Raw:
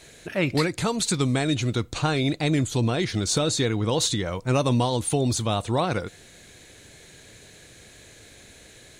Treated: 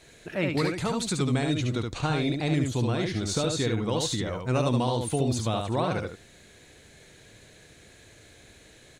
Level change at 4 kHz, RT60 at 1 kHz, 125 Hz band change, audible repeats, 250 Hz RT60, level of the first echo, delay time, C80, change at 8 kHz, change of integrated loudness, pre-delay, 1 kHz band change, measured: -5.0 dB, no reverb, -2.5 dB, 1, no reverb, -4.0 dB, 72 ms, no reverb, -6.5 dB, -3.0 dB, no reverb, -3.0 dB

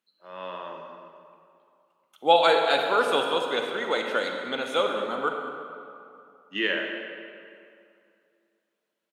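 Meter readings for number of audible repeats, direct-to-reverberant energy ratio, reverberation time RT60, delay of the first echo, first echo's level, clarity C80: 1, 2.5 dB, 2.6 s, 201 ms, -15.5 dB, 4.5 dB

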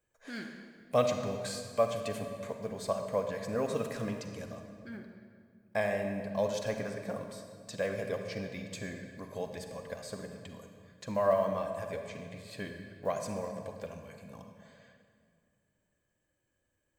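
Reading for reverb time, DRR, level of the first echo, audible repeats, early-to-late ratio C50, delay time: 2.1 s, 5.0 dB, no echo, no echo, 5.5 dB, no echo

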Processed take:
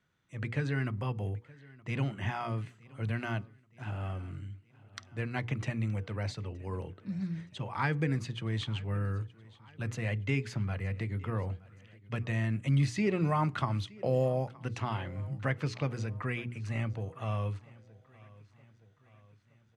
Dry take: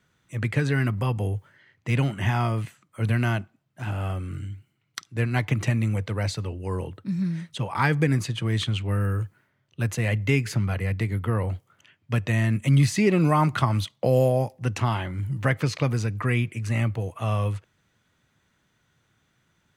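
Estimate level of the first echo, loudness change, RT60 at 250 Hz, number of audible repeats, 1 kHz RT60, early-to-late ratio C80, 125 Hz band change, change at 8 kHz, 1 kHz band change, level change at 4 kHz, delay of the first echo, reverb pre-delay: -22.5 dB, -9.0 dB, no reverb, 3, no reverb, no reverb, -9.0 dB, -13.5 dB, -8.5 dB, -9.5 dB, 921 ms, no reverb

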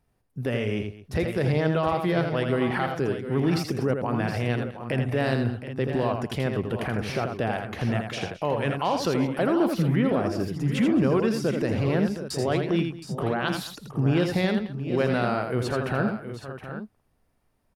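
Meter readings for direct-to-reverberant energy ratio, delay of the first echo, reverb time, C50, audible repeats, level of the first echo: no reverb, 82 ms, no reverb, no reverb, 4, -6.0 dB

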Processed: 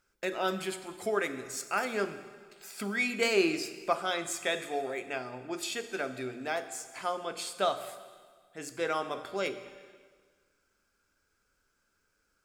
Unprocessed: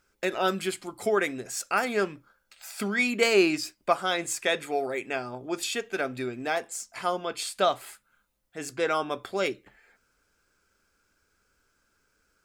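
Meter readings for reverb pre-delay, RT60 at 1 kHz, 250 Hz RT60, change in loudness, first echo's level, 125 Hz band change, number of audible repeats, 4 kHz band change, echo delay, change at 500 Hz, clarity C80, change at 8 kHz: 10 ms, 1.6 s, 1.8 s, -4.5 dB, no echo, -5.0 dB, no echo, -4.5 dB, no echo, -5.0 dB, 13.0 dB, -4.5 dB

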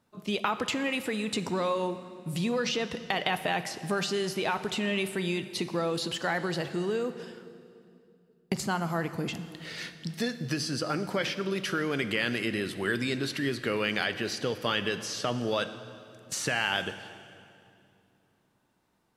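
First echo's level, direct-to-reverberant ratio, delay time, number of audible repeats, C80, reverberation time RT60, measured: no echo, 11.0 dB, no echo, no echo, 13.0 dB, 2.6 s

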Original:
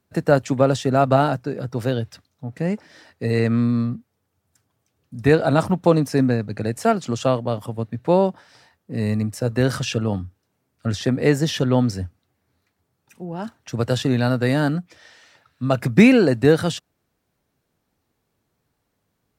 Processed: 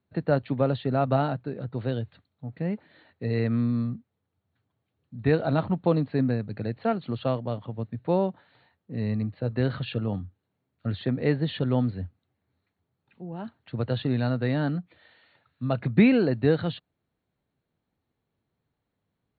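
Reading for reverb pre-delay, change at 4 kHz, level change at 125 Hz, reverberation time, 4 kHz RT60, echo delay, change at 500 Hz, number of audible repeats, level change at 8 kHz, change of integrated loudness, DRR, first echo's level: no reverb, -9.5 dB, -5.0 dB, no reverb, no reverb, no echo, -7.5 dB, no echo, under -40 dB, -6.5 dB, no reverb, no echo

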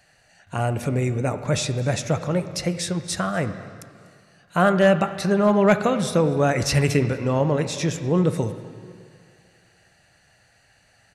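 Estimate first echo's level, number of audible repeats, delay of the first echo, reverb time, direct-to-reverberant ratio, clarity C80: -22.0 dB, 1, 244 ms, 2.2 s, 9.5 dB, 11.5 dB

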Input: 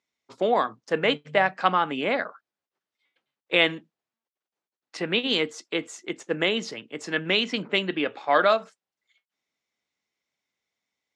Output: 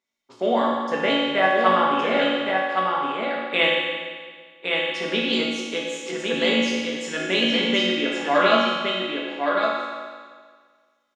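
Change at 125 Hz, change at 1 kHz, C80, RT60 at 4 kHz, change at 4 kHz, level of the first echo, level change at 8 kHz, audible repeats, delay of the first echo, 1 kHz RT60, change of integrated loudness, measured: +0.5 dB, +5.0 dB, -1.5 dB, 1.6 s, +5.0 dB, -4.0 dB, +5.5 dB, 1, 1115 ms, 1.7 s, +3.0 dB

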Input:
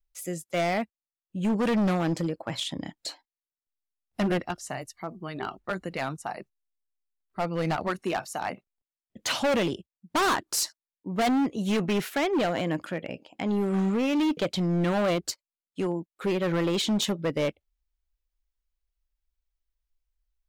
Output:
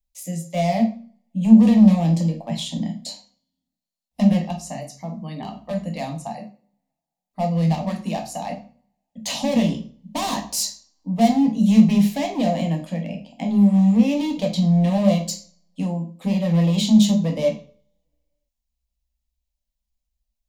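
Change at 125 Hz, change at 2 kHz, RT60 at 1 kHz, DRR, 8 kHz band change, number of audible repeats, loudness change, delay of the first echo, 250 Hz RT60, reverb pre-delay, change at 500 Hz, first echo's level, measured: +11.0 dB, -4.5 dB, 0.40 s, 2.0 dB, +4.0 dB, no echo, +8.5 dB, no echo, 0.50 s, 8 ms, +2.0 dB, no echo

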